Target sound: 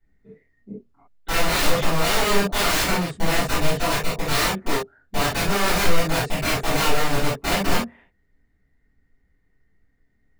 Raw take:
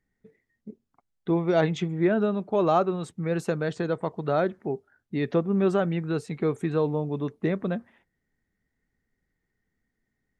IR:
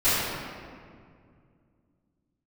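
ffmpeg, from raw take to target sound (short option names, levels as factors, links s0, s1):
-filter_complex "[0:a]bass=f=250:g=2,treble=f=4000:g=-7,aeval=exprs='(mod(15*val(0)+1,2)-1)/15':c=same[s0];[1:a]atrim=start_sample=2205,atrim=end_sample=3528[s1];[s0][s1]afir=irnorm=-1:irlink=0,volume=0.501"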